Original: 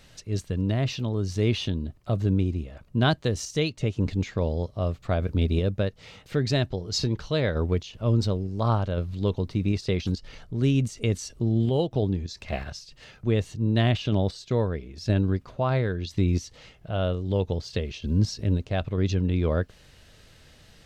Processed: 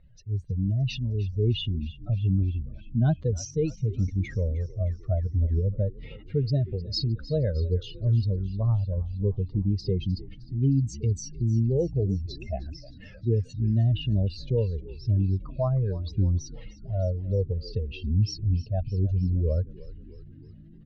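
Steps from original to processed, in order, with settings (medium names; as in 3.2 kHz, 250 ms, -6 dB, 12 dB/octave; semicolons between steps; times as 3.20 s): spectral contrast enhancement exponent 2.5; level-controlled noise filter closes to 2.6 kHz, open at -19.5 dBFS; frequency-shifting echo 309 ms, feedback 65%, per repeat -61 Hz, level -17.5 dB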